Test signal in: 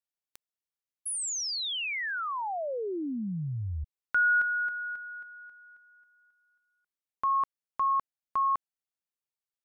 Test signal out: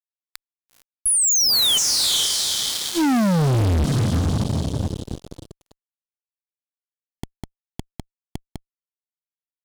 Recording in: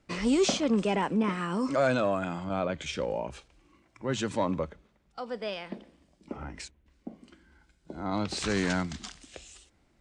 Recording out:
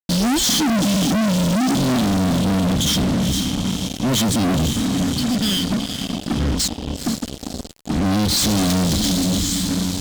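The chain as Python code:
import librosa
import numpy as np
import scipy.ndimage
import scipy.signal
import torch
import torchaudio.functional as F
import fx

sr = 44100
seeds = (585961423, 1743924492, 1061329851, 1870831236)

y = fx.brickwall_bandstop(x, sr, low_hz=320.0, high_hz=3000.0)
y = fx.echo_diffused(y, sr, ms=463, feedback_pct=54, wet_db=-11.5)
y = fx.fuzz(y, sr, gain_db=51.0, gate_db=-53.0)
y = F.gain(torch.from_numpy(y), -3.5).numpy()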